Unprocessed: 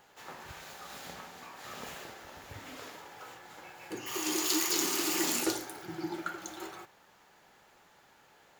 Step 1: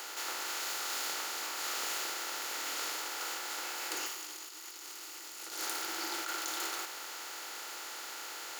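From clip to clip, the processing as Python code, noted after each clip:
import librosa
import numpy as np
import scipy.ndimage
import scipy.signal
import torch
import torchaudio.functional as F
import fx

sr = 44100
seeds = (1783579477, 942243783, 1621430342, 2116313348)

y = fx.bin_compress(x, sr, power=0.4)
y = scipy.signal.sosfilt(scipy.signal.butter(2, 720.0, 'highpass', fs=sr, output='sos'), y)
y = fx.over_compress(y, sr, threshold_db=-33.0, ratio=-0.5)
y = y * 10.0 ** (-4.5 / 20.0)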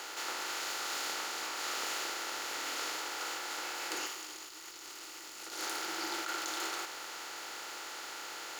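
y = fx.high_shelf(x, sr, hz=11000.0, db=-12.0)
y = fx.quant_dither(y, sr, seeds[0], bits=10, dither='none')
y = fx.low_shelf(y, sr, hz=260.0, db=3.5)
y = y * 10.0 ** (1.0 / 20.0)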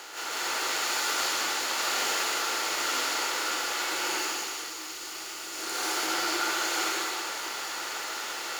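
y = fx.rev_plate(x, sr, seeds[1], rt60_s=1.9, hf_ratio=1.0, predelay_ms=120, drr_db=-8.5)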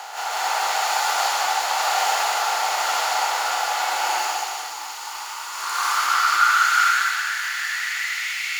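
y = fx.filter_sweep_highpass(x, sr, from_hz=760.0, to_hz=2200.0, start_s=4.52, end_s=8.5, q=5.7)
y = y * 10.0 ** (3.0 / 20.0)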